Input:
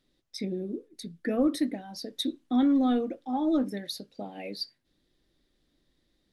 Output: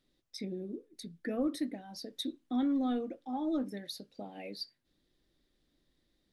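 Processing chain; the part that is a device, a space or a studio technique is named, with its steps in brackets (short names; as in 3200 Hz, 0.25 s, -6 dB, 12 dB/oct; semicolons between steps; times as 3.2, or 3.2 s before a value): parallel compression (in parallel at -3 dB: compressor, threshold -42 dBFS, peak gain reduction 19.5 dB); on the sum: gain -8 dB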